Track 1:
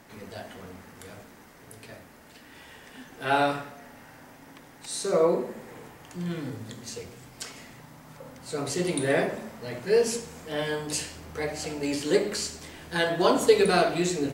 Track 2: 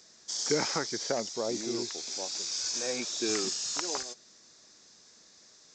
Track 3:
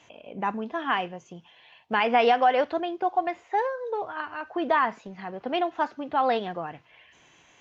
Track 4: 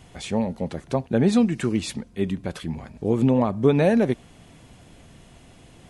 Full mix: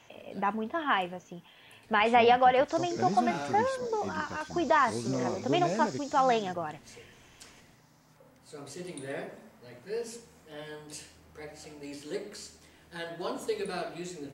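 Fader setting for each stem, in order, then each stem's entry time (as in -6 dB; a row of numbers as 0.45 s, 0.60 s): -13.5 dB, -14.5 dB, -1.5 dB, -14.0 dB; 0.00 s, 2.40 s, 0.00 s, 1.85 s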